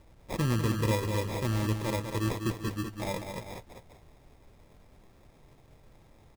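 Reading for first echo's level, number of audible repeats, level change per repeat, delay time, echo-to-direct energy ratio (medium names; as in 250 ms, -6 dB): -7.0 dB, 2, -4.5 dB, 197 ms, -5.5 dB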